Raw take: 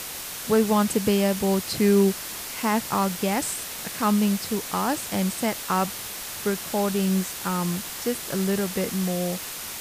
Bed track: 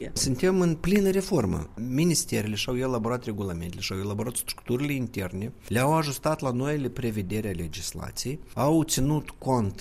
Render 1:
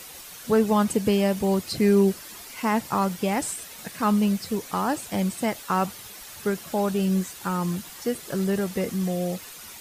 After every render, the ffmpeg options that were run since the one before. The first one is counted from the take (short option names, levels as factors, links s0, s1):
-af "afftdn=nr=10:nf=-35"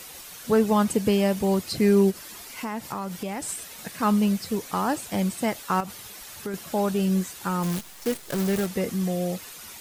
-filter_complex "[0:a]asplit=3[s0][s1][s2];[s0]afade=t=out:st=2.1:d=0.02[s3];[s1]acompressor=threshold=0.0355:ratio=3:attack=3.2:release=140:knee=1:detection=peak,afade=t=in:st=2.1:d=0.02,afade=t=out:st=3.48:d=0.02[s4];[s2]afade=t=in:st=3.48:d=0.02[s5];[s3][s4][s5]amix=inputs=3:normalize=0,asettb=1/sr,asplit=3[s6][s7][s8];[s6]atrim=end=5.804[s9];[s7]atrim=start=5.8:end=6.54,asetpts=PTS-STARTPTS,afade=t=in:d=0.004:c=qsin,afade=t=out:st=0.736:d=0.004:c=qsin,acompressor=threshold=0.0398:ratio=5:attack=3.2:release=140:knee=1:detection=peak[s10];[s8]atrim=start=6.536[s11];[s9][s10]acrossfade=d=0.004:c1=hsin:c2=qsin[s12];[s12][s11]acrossfade=d=0.004:c1=qsin:c2=hsin,asplit=3[s13][s14][s15];[s13]afade=t=out:st=7.62:d=0.02[s16];[s14]acrusher=bits=6:dc=4:mix=0:aa=0.000001,afade=t=in:st=7.62:d=0.02,afade=t=out:st=8.65:d=0.02[s17];[s15]afade=t=in:st=8.65:d=0.02[s18];[s16][s17][s18]amix=inputs=3:normalize=0"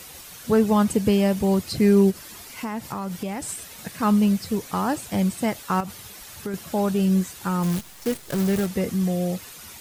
-af "equalizer=f=84:w=0.56:g=7"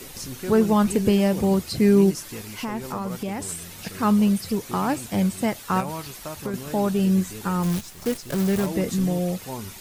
-filter_complex "[1:a]volume=0.316[s0];[0:a][s0]amix=inputs=2:normalize=0"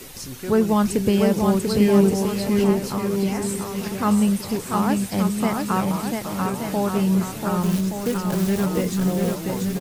-af "aecho=1:1:690|1173|1511|1748|1913:0.631|0.398|0.251|0.158|0.1"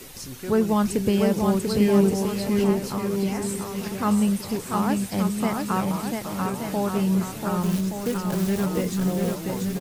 -af "volume=0.75"